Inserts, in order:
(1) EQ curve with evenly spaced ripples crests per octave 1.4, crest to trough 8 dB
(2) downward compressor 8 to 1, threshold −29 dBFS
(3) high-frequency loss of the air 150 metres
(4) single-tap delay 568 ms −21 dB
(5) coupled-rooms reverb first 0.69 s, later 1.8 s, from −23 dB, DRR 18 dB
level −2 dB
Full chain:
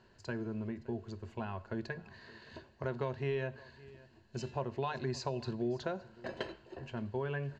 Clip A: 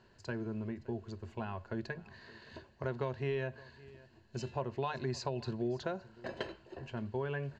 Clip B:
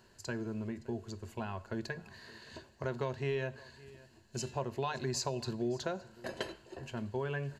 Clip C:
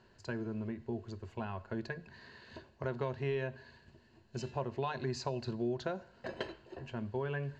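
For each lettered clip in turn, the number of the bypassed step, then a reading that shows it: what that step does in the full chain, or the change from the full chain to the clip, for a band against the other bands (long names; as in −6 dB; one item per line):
5, echo-to-direct ratio −16.0 dB to −21.0 dB
3, 4 kHz band +4.5 dB
4, echo-to-direct ratio −16.0 dB to −18.0 dB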